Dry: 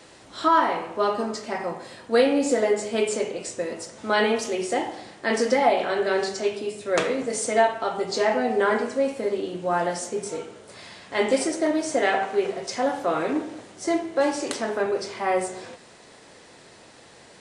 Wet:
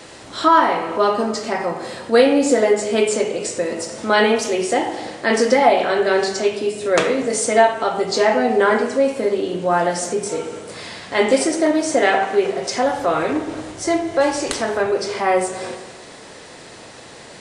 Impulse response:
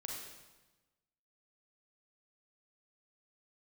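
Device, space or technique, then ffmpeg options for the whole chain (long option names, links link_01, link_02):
ducked reverb: -filter_complex "[0:a]asplit=3[link_01][link_02][link_03];[link_01]afade=type=out:start_time=12.82:duration=0.02[link_04];[link_02]asubboost=boost=6:cutoff=84,afade=type=in:start_time=12.82:duration=0.02,afade=type=out:start_time=14.91:duration=0.02[link_05];[link_03]afade=type=in:start_time=14.91:duration=0.02[link_06];[link_04][link_05][link_06]amix=inputs=3:normalize=0,asplit=3[link_07][link_08][link_09];[1:a]atrim=start_sample=2205[link_10];[link_08][link_10]afir=irnorm=-1:irlink=0[link_11];[link_09]apad=whole_len=767440[link_12];[link_11][link_12]sidechaincompress=threshold=-36dB:ratio=8:attack=16:release=171,volume=-0.5dB[link_13];[link_07][link_13]amix=inputs=2:normalize=0,volume=5.5dB"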